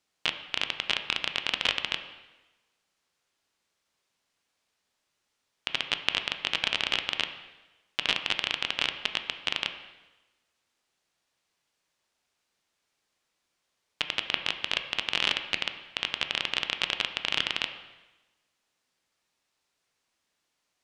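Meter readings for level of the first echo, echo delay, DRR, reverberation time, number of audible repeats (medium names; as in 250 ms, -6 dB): no echo, no echo, 7.0 dB, 1.1 s, no echo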